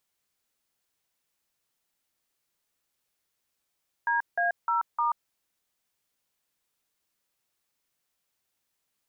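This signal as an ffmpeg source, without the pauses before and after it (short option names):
-f lavfi -i "aevalsrc='0.0531*clip(min(mod(t,0.305),0.134-mod(t,0.305))/0.002,0,1)*(eq(floor(t/0.305),0)*(sin(2*PI*941*mod(t,0.305))+sin(2*PI*1633*mod(t,0.305)))+eq(floor(t/0.305),1)*(sin(2*PI*697*mod(t,0.305))+sin(2*PI*1633*mod(t,0.305)))+eq(floor(t/0.305),2)*(sin(2*PI*941*mod(t,0.305))+sin(2*PI*1336*mod(t,0.305)))+eq(floor(t/0.305),3)*(sin(2*PI*941*mod(t,0.305))+sin(2*PI*1209*mod(t,0.305))))':d=1.22:s=44100"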